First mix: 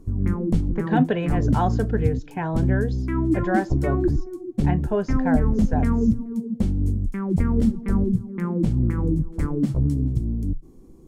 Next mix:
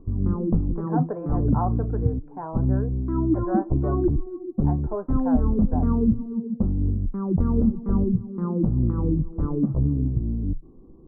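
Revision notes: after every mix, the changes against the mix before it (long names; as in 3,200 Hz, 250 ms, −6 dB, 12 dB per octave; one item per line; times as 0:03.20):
speech: add high-pass filter 780 Hz 6 dB per octave
master: add elliptic low-pass filter 1,200 Hz, stop band 70 dB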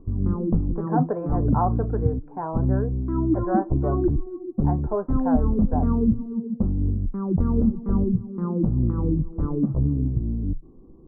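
speech +4.0 dB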